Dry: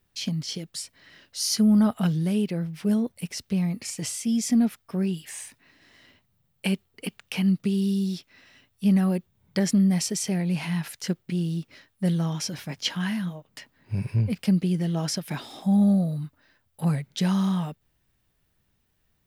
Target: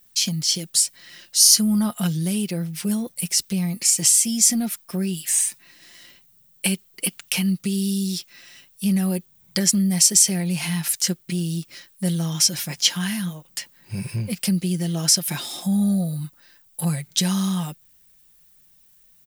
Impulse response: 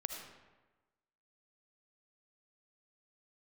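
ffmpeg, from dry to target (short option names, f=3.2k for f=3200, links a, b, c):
-filter_complex "[0:a]equalizer=f=7.6k:w=1.2:g=3.5,aecho=1:1:5.7:0.49,asplit=2[a][b];[b]acompressor=threshold=-26dB:ratio=6,volume=1.5dB[c];[a][c]amix=inputs=2:normalize=0,crystalizer=i=4:c=0,volume=-6dB"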